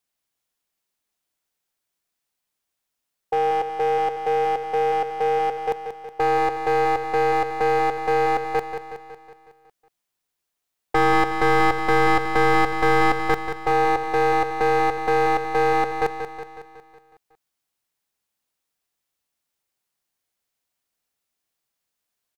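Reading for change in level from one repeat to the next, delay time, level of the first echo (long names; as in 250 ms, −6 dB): −5.0 dB, 184 ms, −8.5 dB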